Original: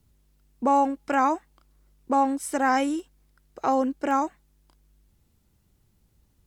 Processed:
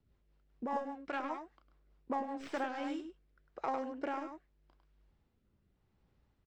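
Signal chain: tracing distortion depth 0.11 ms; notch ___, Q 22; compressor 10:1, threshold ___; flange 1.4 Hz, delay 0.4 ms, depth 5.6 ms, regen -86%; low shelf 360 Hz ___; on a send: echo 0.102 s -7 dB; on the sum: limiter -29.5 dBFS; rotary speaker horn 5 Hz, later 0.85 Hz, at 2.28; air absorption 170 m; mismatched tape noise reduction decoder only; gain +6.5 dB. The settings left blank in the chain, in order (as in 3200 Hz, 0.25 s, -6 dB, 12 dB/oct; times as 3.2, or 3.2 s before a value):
6400 Hz, -29 dBFS, -11.5 dB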